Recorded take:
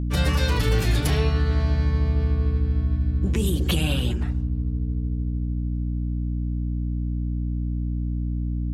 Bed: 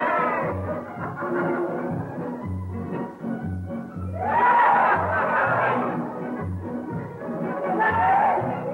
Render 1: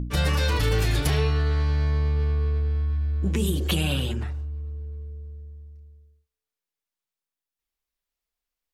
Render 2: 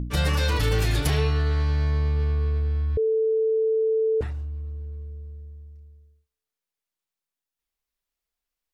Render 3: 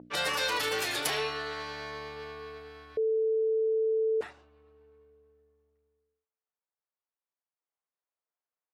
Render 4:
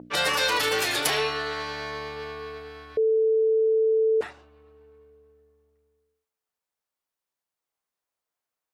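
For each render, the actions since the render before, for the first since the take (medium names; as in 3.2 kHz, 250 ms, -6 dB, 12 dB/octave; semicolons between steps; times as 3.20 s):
de-hum 60 Hz, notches 11
2.97–4.21 s: bleep 442 Hz -19 dBFS
level-controlled noise filter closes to 1.2 kHz, open at -21 dBFS; high-pass 540 Hz 12 dB/octave
trim +6 dB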